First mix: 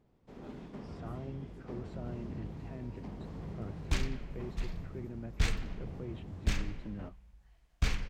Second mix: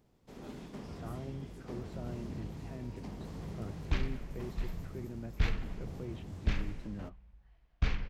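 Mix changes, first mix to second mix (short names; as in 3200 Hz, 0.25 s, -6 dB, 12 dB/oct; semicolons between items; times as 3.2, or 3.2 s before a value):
first sound: add high shelf 4000 Hz +10.5 dB; second sound: add air absorption 220 m; master: add high shelf 7200 Hz +5 dB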